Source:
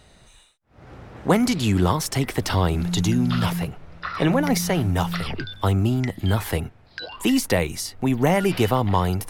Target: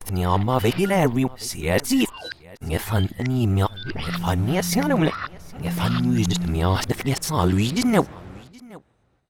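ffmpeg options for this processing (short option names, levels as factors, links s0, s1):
-af "areverse,agate=range=0.0398:threshold=0.00708:ratio=16:detection=peak,aecho=1:1:771:0.0668"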